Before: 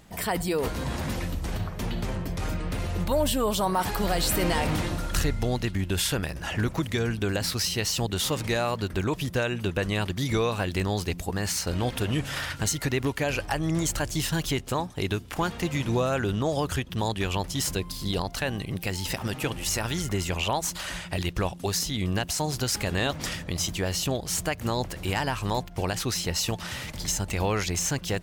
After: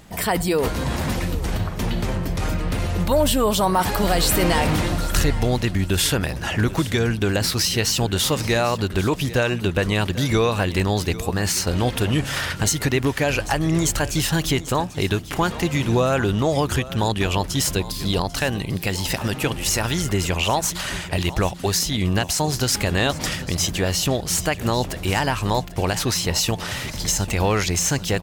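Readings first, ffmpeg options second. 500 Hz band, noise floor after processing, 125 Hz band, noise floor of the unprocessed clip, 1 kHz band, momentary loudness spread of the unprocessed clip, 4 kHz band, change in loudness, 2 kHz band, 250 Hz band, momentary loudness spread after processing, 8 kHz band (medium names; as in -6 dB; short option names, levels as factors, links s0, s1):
+6.5 dB, -32 dBFS, +6.5 dB, -40 dBFS, +6.5 dB, 5 LU, +6.5 dB, +6.5 dB, +6.5 dB, +6.5 dB, 5 LU, +6.5 dB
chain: -af "aecho=1:1:793|1586|2379:0.15|0.0389|0.0101,acontrast=63"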